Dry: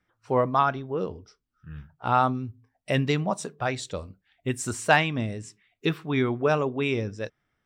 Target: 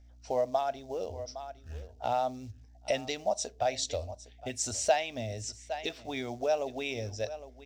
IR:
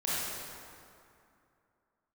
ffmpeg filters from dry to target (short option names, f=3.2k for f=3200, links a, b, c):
-af "aeval=exprs='val(0)+0.00178*(sin(2*PI*60*n/s)+sin(2*PI*2*60*n/s)/2+sin(2*PI*3*60*n/s)/3+sin(2*PI*4*60*n/s)/4+sin(2*PI*5*60*n/s)/5)':c=same,aecho=1:1:811:0.0891,acrusher=bits=8:mode=log:mix=0:aa=0.000001,acompressor=threshold=-32dB:ratio=2.5,firequalizer=gain_entry='entry(100,0);entry(150,-26);entry(230,-7);entry(340,-11);entry(660,8);entry(1100,-15);entry(2000,-4);entry(5800,9);entry(9600,-9)':delay=0.05:min_phase=1,volume=2.5dB"